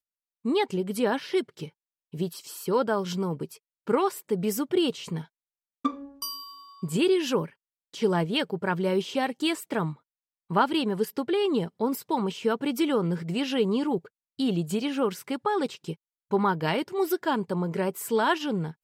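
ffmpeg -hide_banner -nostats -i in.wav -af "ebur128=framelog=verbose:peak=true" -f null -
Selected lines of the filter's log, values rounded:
Integrated loudness:
  I:         -27.7 LUFS
  Threshold: -38.1 LUFS
Loudness range:
  LRA:         2.7 LU
  Threshold: -48.3 LUFS
  LRA low:   -29.9 LUFS
  LRA high:  -27.2 LUFS
True peak:
  Peak:       -9.0 dBFS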